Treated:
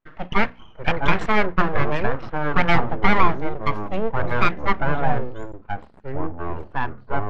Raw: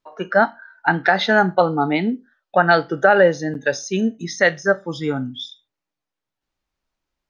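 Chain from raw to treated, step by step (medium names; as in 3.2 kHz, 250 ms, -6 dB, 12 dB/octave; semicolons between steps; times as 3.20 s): local Wiener filter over 9 samples; full-wave rectifier; low-pass 2.6 kHz 12 dB/octave; hum notches 60/120/180/240/300 Hz; ever faster or slower copies 513 ms, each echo -6 st, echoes 2, each echo -6 dB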